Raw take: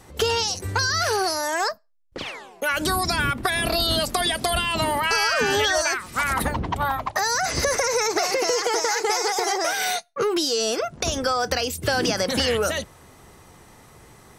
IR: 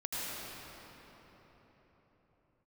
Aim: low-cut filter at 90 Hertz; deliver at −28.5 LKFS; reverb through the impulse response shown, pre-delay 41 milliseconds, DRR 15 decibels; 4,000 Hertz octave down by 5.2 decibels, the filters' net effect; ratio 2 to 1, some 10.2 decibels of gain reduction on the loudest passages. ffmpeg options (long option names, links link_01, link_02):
-filter_complex "[0:a]highpass=90,equalizer=frequency=4000:width_type=o:gain=-7,acompressor=threshold=-39dB:ratio=2,asplit=2[link_01][link_02];[1:a]atrim=start_sample=2205,adelay=41[link_03];[link_02][link_03]afir=irnorm=-1:irlink=0,volume=-20dB[link_04];[link_01][link_04]amix=inputs=2:normalize=0,volume=5dB"